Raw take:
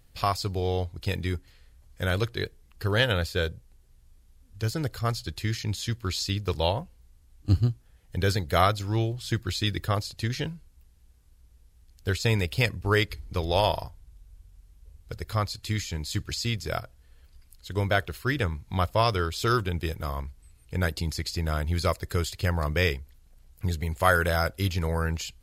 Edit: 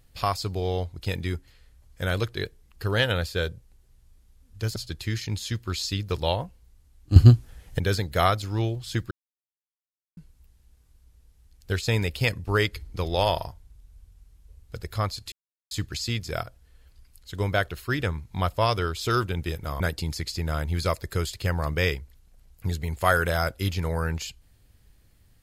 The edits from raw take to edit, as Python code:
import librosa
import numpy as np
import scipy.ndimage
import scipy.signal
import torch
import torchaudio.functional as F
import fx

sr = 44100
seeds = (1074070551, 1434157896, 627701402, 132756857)

y = fx.edit(x, sr, fx.cut(start_s=4.76, length_s=0.37),
    fx.clip_gain(start_s=7.53, length_s=0.63, db=11.5),
    fx.silence(start_s=9.48, length_s=1.06),
    fx.silence(start_s=15.69, length_s=0.39),
    fx.cut(start_s=20.17, length_s=0.62), tone=tone)